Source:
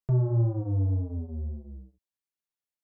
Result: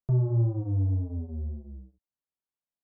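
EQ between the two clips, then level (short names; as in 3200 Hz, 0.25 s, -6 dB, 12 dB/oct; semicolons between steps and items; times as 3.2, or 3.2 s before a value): LPF 1100 Hz 12 dB/oct; bell 480 Hz -4 dB 0.25 oct; dynamic EQ 650 Hz, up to -3 dB, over -42 dBFS, Q 1.2; 0.0 dB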